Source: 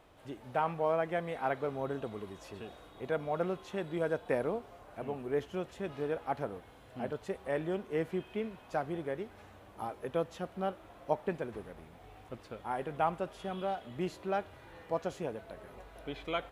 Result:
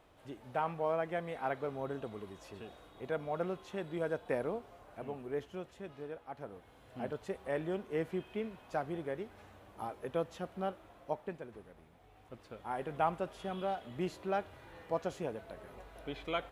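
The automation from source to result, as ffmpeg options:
-af "volume=5.01,afade=t=out:st=4.87:d=1.44:silence=0.375837,afade=t=in:st=6.31:d=0.66:silence=0.334965,afade=t=out:st=10.61:d=0.8:silence=0.473151,afade=t=in:st=12.11:d=0.86:silence=0.421697"

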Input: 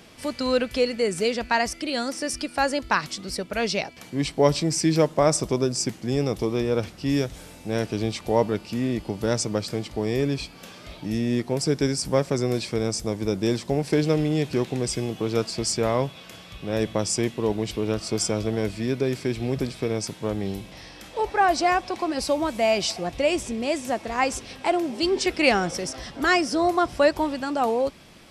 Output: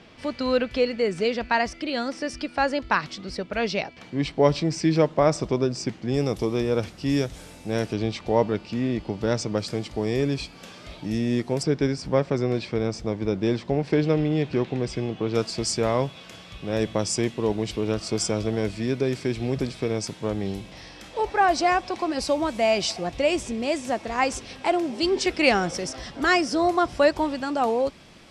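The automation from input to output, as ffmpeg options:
-af "asetnsamples=n=441:p=0,asendcmd='6.14 lowpass f 11000;7.93 lowpass f 4900;9.58 lowpass f 9000;11.63 lowpass f 3500;15.34 lowpass f 8700',lowpass=4100"

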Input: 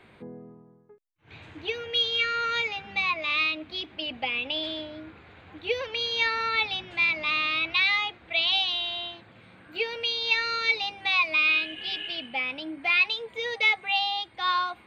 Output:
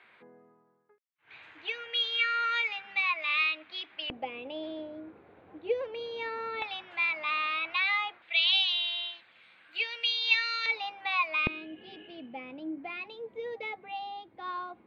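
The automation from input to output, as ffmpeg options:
-af "asetnsamples=n=441:p=0,asendcmd='4.1 bandpass f 440;6.62 bandpass f 1200;8.22 bandpass f 2900;10.66 bandpass f 1100;11.47 bandpass f 300',bandpass=f=1800:t=q:w=1:csg=0"

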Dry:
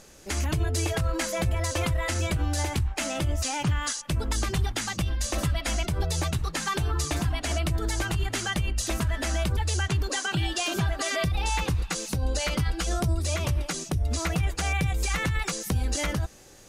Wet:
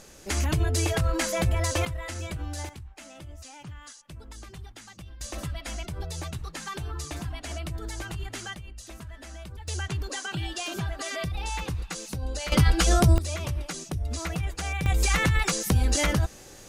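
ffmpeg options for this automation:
-af "asetnsamples=n=441:p=0,asendcmd='1.85 volume volume -7.5dB;2.69 volume volume -16.5dB;5.21 volume volume -7.5dB;8.55 volume volume -15dB;9.68 volume volume -5dB;12.52 volume volume 7dB;13.18 volume volume -4dB;14.86 volume volume 4dB',volume=1.19"

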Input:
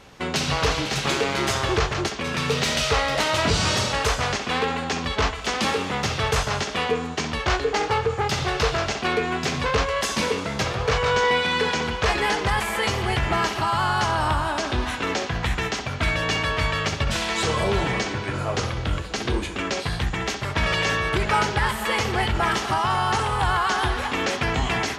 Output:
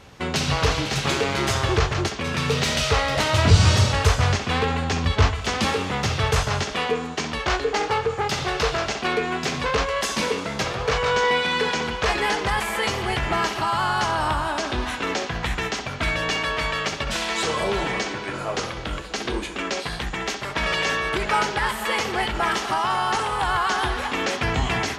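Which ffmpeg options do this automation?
-af "asetnsamples=n=441:p=0,asendcmd='3.17 equalizer g 14;5.64 equalizer g 5.5;6.72 equalizer g -6;16.29 equalizer g -14.5;23.55 equalizer g -6.5;24.43 equalizer g 2.5',equalizer=f=93:t=o:w=1.1:g=6"

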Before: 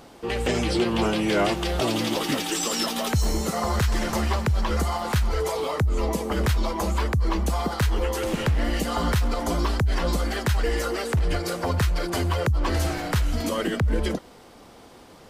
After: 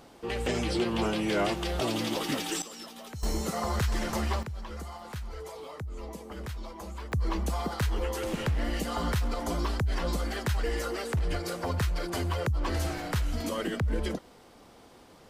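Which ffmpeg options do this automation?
-af "asetnsamples=n=441:p=0,asendcmd='2.62 volume volume -18dB;3.23 volume volume -5.5dB;4.43 volume volume -15.5dB;7.12 volume volume -6dB',volume=0.531"

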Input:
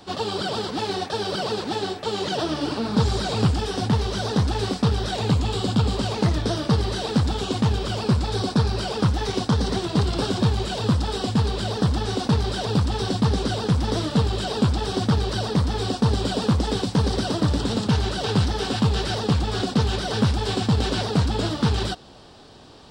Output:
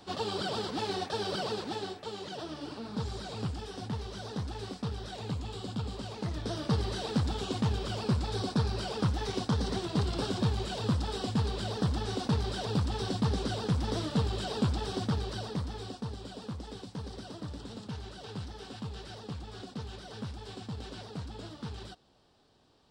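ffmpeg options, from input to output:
-af "volume=0.944,afade=t=out:st=1.35:d=0.87:silence=0.398107,afade=t=in:st=6.25:d=0.48:silence=0.473151,afade=t=out:st=14.74:d=1.41:silence=0.281838"

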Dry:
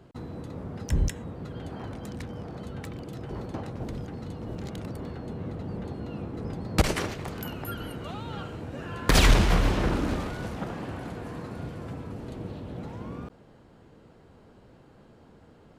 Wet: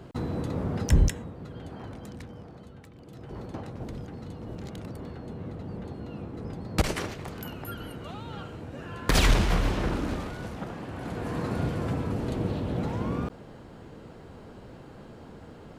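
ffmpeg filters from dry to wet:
-af "volume=26.6,afade=t=out:st=0.77:d=0.54:silence=0.298538,afade=t=out:st=1.96:d=0.96:silence=0.316228,afade=t=in:st=2.92:d=0.53:silence=0.298538,afade=t=in:st=10.91:d=0.61:silence=0.298538"

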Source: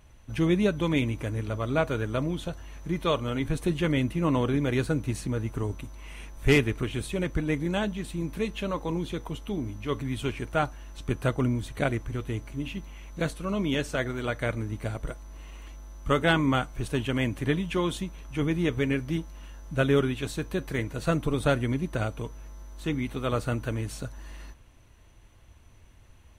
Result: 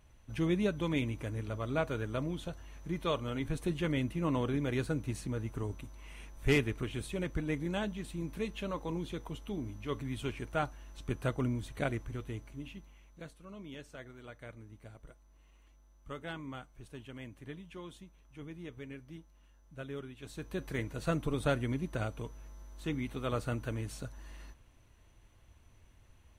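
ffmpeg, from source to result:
-af "volume=2,afade=t=out:st=11.98:d=1.27:silence=0.237137,afade=t=in:st=20.16:d=0.51:silence=0.223872"

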